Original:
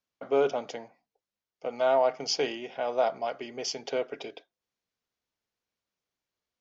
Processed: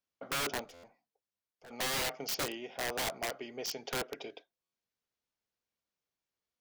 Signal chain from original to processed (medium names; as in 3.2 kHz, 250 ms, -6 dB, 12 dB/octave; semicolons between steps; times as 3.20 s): integer overflow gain 24 dB; 0.64–1.71 s: valve stage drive 46 dB, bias 0.35; buffer glitch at 0.73/4.62 s, samples 512, times 8; trim -4.5 dB